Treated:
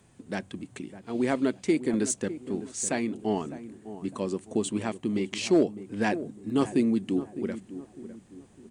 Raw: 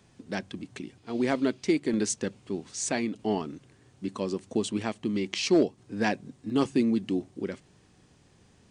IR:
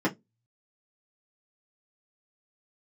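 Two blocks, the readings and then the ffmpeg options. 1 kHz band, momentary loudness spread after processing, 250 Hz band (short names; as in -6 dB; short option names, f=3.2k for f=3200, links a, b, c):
0.0 dB, 17 LU, +0.5 dB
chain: -filter_complex "[0:a]aexciter=amount=2.7:drive=9.2:freq=7.3k,aemphasis=mode=reproduction:type=cd,asplit=2[a][b];[b]adelay=605,lowpass=f=930:p=1,volume=-12.5dB,asplit=2[c][d];[d]adelay=605,lowpass=f=930:p=1,volume=0.41,asplit=2[e][f];[f]adelay=605,lowpass=f=930:p=1,volume=0.41,asplit=2[g][h];[h]adelay=605,lowpass=f=930:p=1,volume=0.41[i];[a][c][e][g][i]amix=inputs=5:normalize=0"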